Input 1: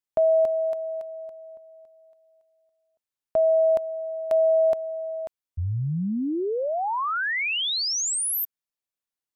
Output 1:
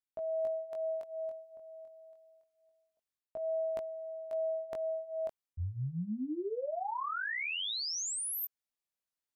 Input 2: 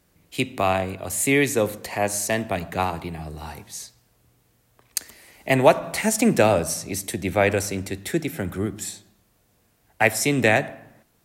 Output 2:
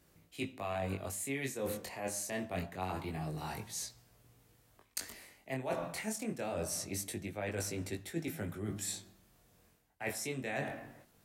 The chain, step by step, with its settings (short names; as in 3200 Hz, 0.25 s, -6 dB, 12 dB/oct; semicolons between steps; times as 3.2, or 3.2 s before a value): reverse; compressor 10:1, threshold -32 dBFS; reverse; chorus 0.25 Hz, delay 18 ms, depth 5.3 ms